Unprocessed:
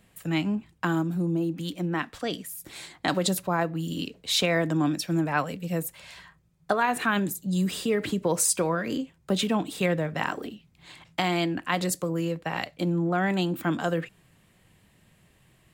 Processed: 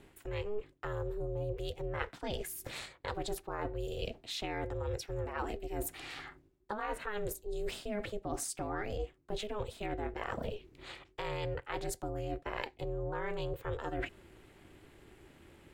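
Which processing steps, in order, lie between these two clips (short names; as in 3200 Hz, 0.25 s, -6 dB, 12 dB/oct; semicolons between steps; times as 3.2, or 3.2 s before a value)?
high shelf 4200 Hz -9 dB; reverse; compressor 10:1, threshold -38 dBFS, peak gain reduction 19 dB; reverse; ring modulator 210 Hz; gain +6.5 dB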